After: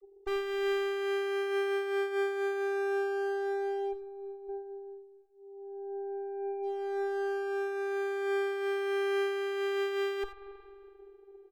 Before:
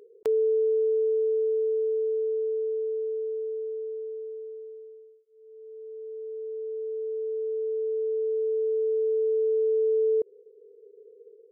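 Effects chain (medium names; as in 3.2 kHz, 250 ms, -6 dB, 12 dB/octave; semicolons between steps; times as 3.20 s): 3.91–4.47 s: band-stop 450 Hz, Q 12; vocoder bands 32, square 396 Hz; Chebyshev shaper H 2 -7 dB, 6 -31 dB, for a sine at -31.5 dBFS; on a send: delay 89 ms -14 dB; on the sum: spring tank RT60 2.4 s, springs 45 ms, chirp 35 ms, DRR 7.5 dB; random flutter of the level, depth 65%; trim +3.5 dB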